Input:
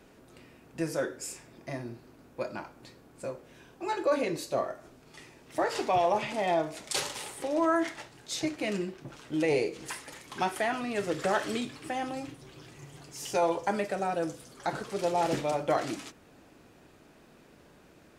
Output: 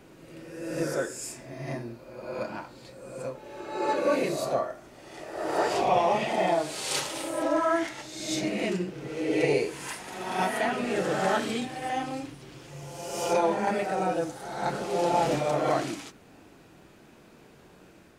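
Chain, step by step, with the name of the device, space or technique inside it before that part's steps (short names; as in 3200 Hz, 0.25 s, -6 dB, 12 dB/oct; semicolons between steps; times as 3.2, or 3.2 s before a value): reverse reverb (reverse; reverb RT60 1.3 s, pre-delay 17 ms, DRR -0.5 dB; reverse)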